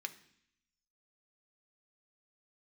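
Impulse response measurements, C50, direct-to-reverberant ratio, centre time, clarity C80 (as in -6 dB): 15.5 dB, 7.0 dB, 5 ms, 18.0 dB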